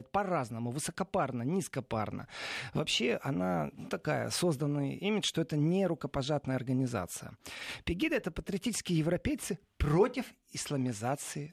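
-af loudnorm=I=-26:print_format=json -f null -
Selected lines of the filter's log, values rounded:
"input_i" : "-33.5",
"input_tp" : "-14.6",
"input_lra" : "2.1",
"input_thresh" : "-43.5",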